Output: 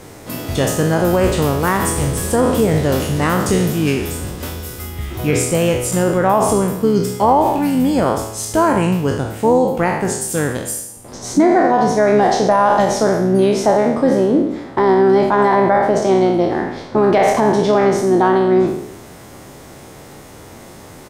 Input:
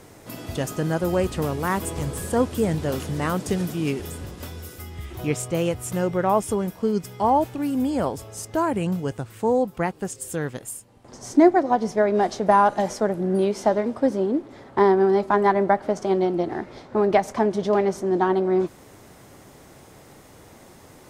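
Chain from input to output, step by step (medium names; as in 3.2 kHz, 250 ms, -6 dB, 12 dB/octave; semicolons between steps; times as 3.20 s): spectral sustain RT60 0.78 s; harmony voices -7 st -13 dB; loudness maximiser +11 dB; trim -3.5 dB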